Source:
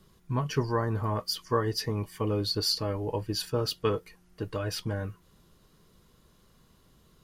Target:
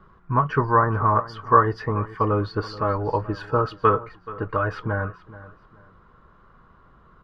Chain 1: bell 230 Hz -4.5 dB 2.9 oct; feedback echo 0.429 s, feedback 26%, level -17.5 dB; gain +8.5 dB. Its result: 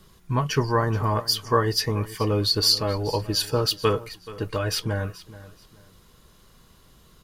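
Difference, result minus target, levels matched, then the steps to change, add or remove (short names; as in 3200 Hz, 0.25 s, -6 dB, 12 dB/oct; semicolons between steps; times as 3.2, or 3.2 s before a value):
1000 Hz band -7.0 dB
add first: synth low-pass 1300 Hz, resonance Q 3.2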